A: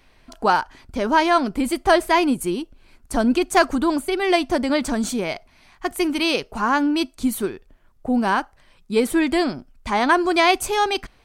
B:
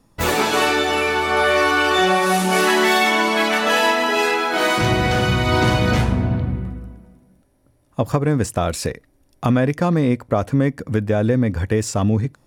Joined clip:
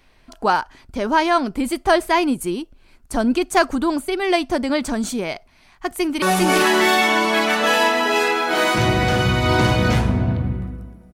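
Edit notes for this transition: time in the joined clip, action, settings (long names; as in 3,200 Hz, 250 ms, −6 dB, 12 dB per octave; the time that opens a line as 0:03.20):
A
0:05.89–0:06.22: delay throw 400 ms, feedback 25%, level −0.5 dB
0:06.22: continue with B from 0:02.25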